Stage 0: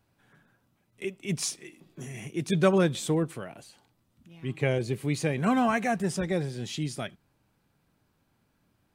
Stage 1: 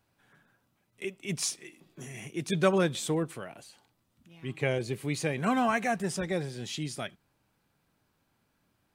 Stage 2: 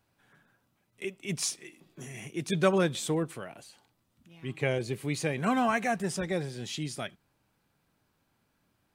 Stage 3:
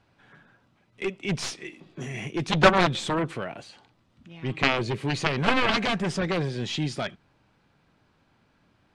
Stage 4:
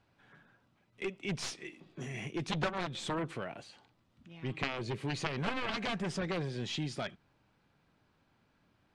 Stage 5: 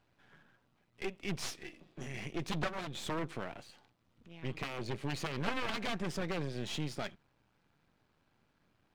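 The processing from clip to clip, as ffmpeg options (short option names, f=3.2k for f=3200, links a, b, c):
-af "lowshelf=f=420:g=-5"
-af anull
-af "aeval=exprs='0.266*(cos(1*acos(clip(val(0)/0.266,-1,1)))-cos(1*PI/2))+0.0188*(cos(6*acos(clip(val(0)/0.266,-1,1)))-cos(6*PI/2))+0.0841*(cos(7*acos(clip(val(0)/0.266,-1,1)))-cos(7*PI/2))':c=same,lowpass=4.4k,volume=7.5dB"
-af "acompressor=threshold=-25dB:ratio=4,volume=-6.5dB"
-af "aeval=exprs='if(lt(val(0),0),0.251*val(0),val(0))':c=same,volume=1dB"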